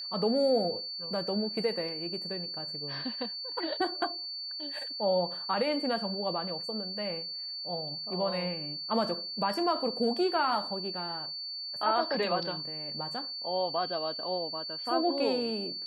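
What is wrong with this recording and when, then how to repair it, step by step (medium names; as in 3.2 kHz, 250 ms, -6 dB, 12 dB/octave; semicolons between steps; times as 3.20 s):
whine 4.5 kHz -36 dBFS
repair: band-stop 4.5 kHz, Q 30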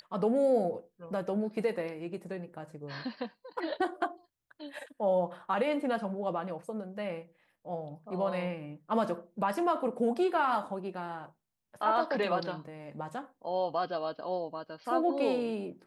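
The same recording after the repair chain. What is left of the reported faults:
nothing left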